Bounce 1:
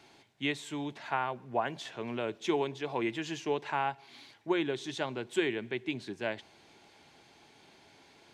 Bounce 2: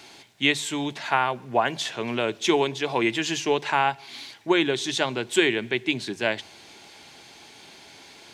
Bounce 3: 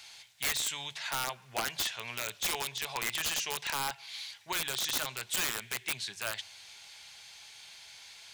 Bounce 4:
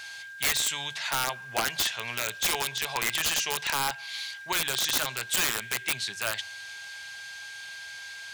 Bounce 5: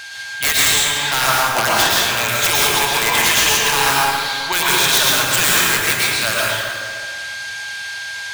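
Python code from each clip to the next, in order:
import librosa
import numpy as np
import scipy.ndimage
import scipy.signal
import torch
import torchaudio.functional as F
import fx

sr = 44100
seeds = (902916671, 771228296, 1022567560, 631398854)

y1 = fx.high_shelf(x, sr, hz=2300.0, db=8.5)
y1 = fx.hum_notches(y1, sr, base_hz=50, count=3)
y1 = y1 * librosa.db_to_amplitude(8.0)
y2 = fx.tone_stack(y1, sr, knobs='10-0-10')
y2 = (np.mod(10.0 ** (23.5 / 20.0) * y2 + 1.0, 2.0) - 1.0) / 10.0 ** (23.5 / 20.0)
y3 = y2 + 10.0 ** (-46.0 / 20.0) * np.sin(2.0 * np.pi * 1600.0 * np.arange(len(y2)) / sr)
y3 = y3 * librosa.db_to_amplitude(5.5)
y4 = fx.rev_plate(y3, sr, seeds[0], rt60_s=2.1, hf_ratio=0.55, predelay_ms=95, drr_db=-5.5)
y4 = y4 * librosa.db_to_amplitude(8.0)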